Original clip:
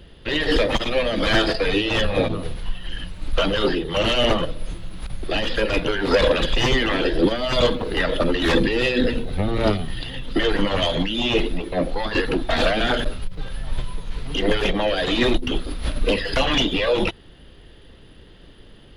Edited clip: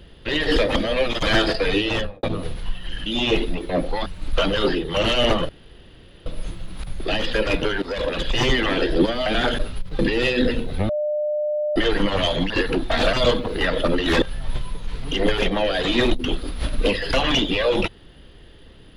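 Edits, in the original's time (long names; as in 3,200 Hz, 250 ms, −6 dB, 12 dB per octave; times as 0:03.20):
0:00.76–0:01.23: reverse
0:01.88–0:02.23: fade out and dull
0:04.49: splice in room tone 0.77 s
0:06.05–0:06.70: fade in, from −16 dB
0:07.49–0:08.58: swap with 0:12.72–0:13.45
0:09.48–0:10.35: beep over 600 Hz −20 dBFS
0:11.09–0:12.09: move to 0:03.06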